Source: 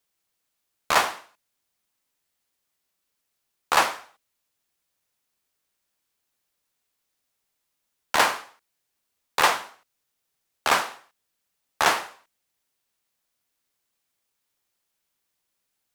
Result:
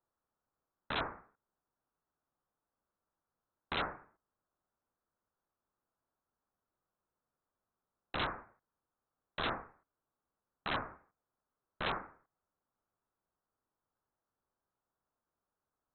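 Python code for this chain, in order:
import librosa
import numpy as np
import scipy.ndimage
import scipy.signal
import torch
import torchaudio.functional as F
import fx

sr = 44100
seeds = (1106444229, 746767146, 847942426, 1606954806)

y = scipy.signal.sosfilt(scipy.signal.ellip(4, 1.0, 60, 2700.0, 'highpass', fs=sr, output='sos'), x)
y = (np.mod(10.0 ** (21.0 / 20.0) * y + 1.0, 2.0) - 1.0) / 10.0 ** (21.0 / 20.0)
y = fx.freq_invert(y, sr, carrier_hz=4000)
y = F.gain(torch.from_numpy(y), -1.0).numpy()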